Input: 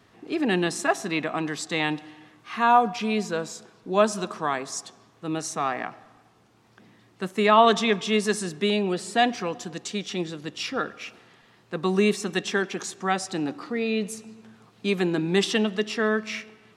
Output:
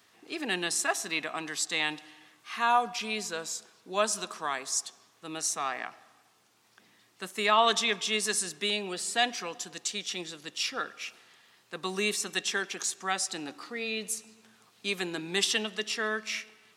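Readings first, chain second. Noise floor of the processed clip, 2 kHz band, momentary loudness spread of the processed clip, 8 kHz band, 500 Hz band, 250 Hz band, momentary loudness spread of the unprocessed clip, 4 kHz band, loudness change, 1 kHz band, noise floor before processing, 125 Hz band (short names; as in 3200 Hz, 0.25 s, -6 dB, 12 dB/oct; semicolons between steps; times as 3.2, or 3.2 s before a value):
-65 dBFS, -2.5 dB, 12 LU, +4.0 dB, -9.5 dB, -13.0 dB, 14 LU, +0.5 dB, -5.0 dB, -6.5 dB, -59 dBFS, -14.5 dB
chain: tilt +3.5 dB/oct; gain -6 dB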